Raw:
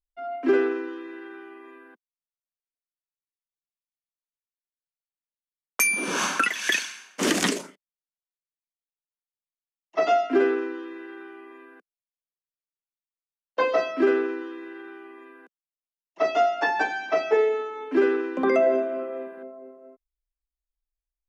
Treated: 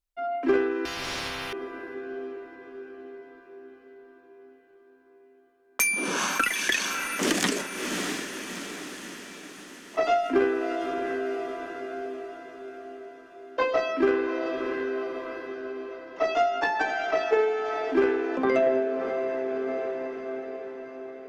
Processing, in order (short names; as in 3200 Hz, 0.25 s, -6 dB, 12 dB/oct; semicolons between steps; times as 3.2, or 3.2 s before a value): added harmonics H 3 -18 dB, 4 -28 dB, 6 -32 dB, 8 -42 dB, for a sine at -9 dBFS; diffused feedback echo 0.649 s, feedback 54%, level -12 dB; in parallel at -2.5 dB: negative-ratio compressor -37 dBFS, ratio -1; 0.85–1.53 on the sum: spectral compressor 10:1